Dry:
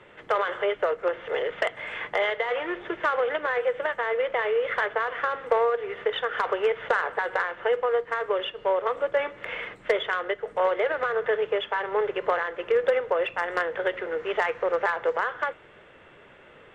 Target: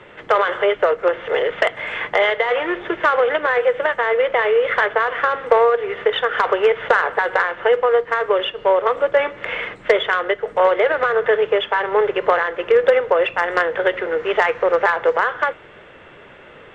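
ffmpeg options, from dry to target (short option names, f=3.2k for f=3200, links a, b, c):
-af "lowpass=7.8k,volume=8.5dB"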